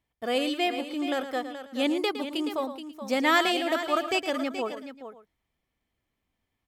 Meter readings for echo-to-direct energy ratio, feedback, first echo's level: -8.0 dB, no steady repeat, -11.0 dB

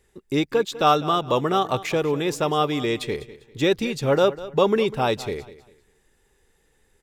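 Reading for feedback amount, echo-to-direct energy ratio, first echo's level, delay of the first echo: 29%, -16.0 dB, -16.5 dB, 0.199 s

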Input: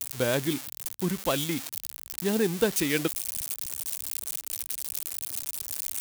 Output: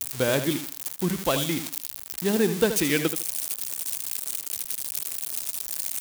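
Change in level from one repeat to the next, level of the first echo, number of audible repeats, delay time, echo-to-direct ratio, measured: -13.0 dB, -10.0 dB, 2, 78 ms, -10.0 dB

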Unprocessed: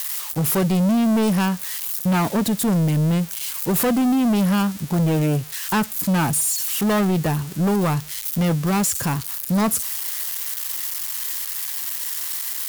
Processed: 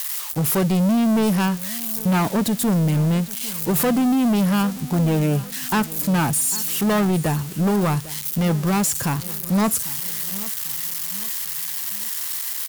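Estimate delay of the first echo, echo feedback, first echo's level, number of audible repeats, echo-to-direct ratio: 0.799 s, 46%, -18.0 dB, 3, -17.0 dB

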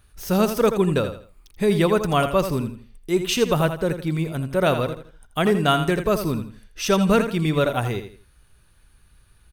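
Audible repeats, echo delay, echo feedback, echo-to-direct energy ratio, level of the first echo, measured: 3, 82 ms, 30%, -9.0 dB, -9.5 dB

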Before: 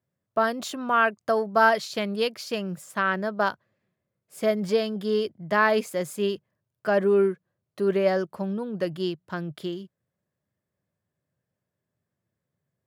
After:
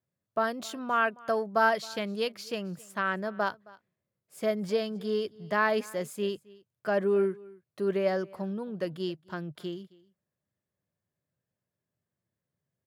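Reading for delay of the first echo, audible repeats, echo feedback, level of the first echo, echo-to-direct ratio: 0.268 s, 1, no steady repeat, -23.0 dB, -23.0 dB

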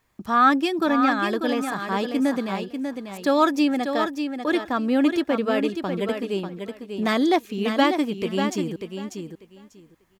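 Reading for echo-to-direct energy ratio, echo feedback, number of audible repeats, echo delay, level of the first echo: -7.0 dB, 17%, 2, 0.593 s, -7.0 dB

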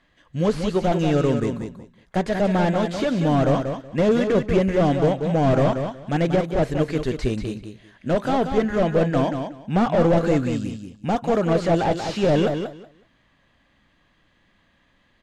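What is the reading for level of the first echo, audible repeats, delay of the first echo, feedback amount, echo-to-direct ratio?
-7.0 dB, 2, 0.186 s, 18%, -7.0 dB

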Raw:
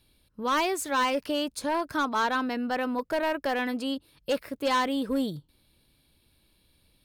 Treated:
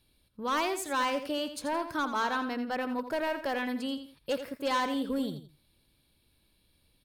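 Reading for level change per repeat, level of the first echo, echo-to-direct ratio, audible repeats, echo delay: -10.5 dB, -10.5 dB, -10.0 dB, 2, 84 ms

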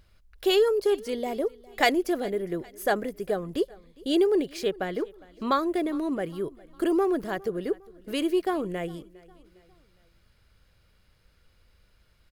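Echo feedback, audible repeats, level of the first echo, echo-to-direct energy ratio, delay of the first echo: 46%, 2, -23.0 dB, -22.0 dB, 0.407 s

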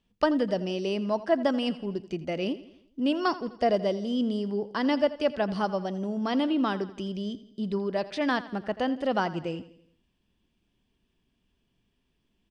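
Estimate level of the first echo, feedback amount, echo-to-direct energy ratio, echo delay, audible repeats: -16.5 dB, 51%, -15.0 dB, 84 ms, 4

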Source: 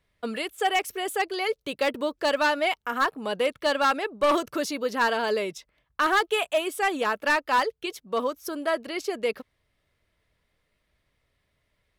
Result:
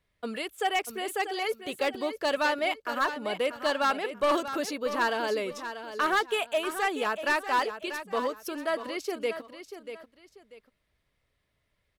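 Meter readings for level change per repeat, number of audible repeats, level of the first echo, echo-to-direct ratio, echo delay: -11.0 dB, 2, -10.5 dB, -10.0 dB, 0.639 s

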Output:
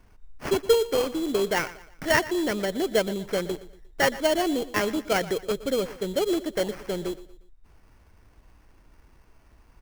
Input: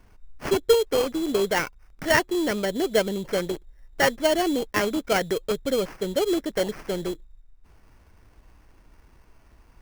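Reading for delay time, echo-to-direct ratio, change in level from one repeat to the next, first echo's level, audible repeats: 0.118 s, -16.5 dB, -8.0 dB, -17.0 dB, 3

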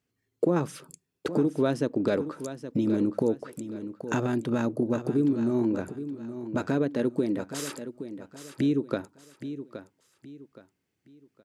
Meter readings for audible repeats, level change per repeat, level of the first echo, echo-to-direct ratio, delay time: 3, -9.5 dB, -11.5 dB, -11.0 dB, 0.82 s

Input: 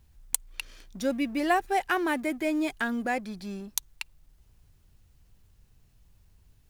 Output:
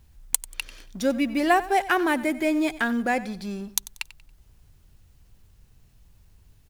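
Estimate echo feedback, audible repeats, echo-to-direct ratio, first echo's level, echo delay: 30%, 2, -16.5 dB, -17.0 dB, 93 ms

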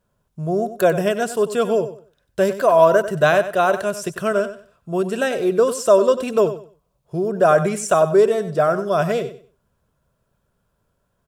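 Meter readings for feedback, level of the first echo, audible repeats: 23%, -12.5 dB, 2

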